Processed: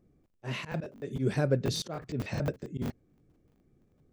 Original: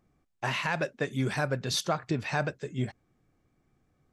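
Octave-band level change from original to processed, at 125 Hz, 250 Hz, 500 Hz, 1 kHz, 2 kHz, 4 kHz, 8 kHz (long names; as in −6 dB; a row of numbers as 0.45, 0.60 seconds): +0.5, 0.0, −0.5, −10.0, −9.5, −5.0, −5.5 decibels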